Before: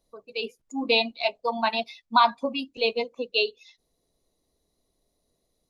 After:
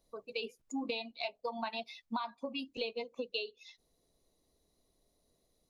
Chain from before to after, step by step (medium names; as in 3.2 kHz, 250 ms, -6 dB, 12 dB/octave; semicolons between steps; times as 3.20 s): compression 20:1, threshold -33 dBFS, peak gain reduction 20 dB; trim -1 dB